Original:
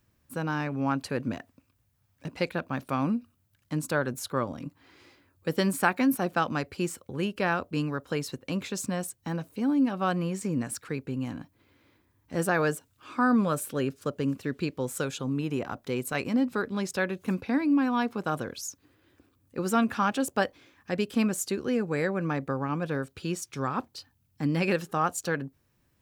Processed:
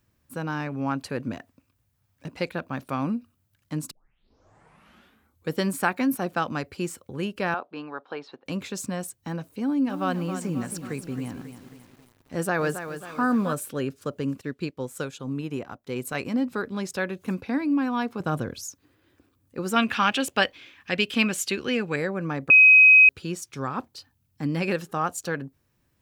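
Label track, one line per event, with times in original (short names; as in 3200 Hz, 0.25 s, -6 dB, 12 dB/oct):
3.910000	3.910000	tape start 1.62 s
7.540000	8.460000	speaker cabinet 430–3600 Hz, peaks and dips at 520 Hz -4 dB, 800 Hz +7 dB, 2000 Hz -6 dB, 2900 Hz -5 dB
9.620000	13.530000	lo-fi delay 0.27 s, feedback 55%, word length 8-bit, level -9.5 dB
14.410000	15.960000	upward expander, over -51 dBFS
18.200000	18.650000	low shelf 230 Hz +10.5 dB
19.760000	21.960000	bell 2800 Hz +14.5 dB 1.5 oct
22.500000	23.090000	bleep 2530 Hz -9.5 dBFS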